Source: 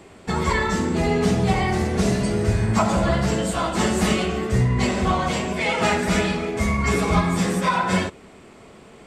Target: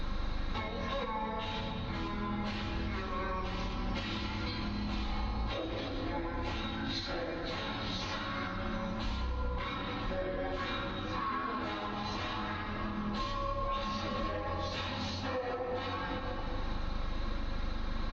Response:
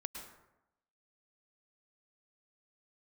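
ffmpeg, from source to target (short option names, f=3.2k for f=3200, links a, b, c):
-filter_complex "[0:a]acrossover=split=420|1600[a][b][c];[a]asoftclip=type=tanh:threshold=-20.5dB[d];[c]acontrast=83[e];[d][b][e]amix=inputs=3:normalize=0,aecho=1:1:101|202|303|404:0.0841|0.048|0.0273|0.0156,asplit=2[f][g];[1:a]atrim=start_sample=2205[h];[g][h]afir=irnorm=-1:irlink=0,volume=-5.5dB[i];[f][i]amix=inputs=2:normalize=0,aeval=exprs='val(0)+0.02*(sin(2*PI*50*n/s)+sin(2*PI*2*50*n/s)/2+sin(2*PI*3*50*n/s)/3+sin(2*PI*4*50*n/s)/4+sin(2*PI*5*50*n/s)/5)':c=same,asetrate=22050,aresample=44100,acompressor=threshold=-30dB:ratio=6,alimiter=level_in=3.5dB:limit=-24dB:level=0:latency=1:release=460,volume=-3.5dB,aecho=1:1:3.7:0.47"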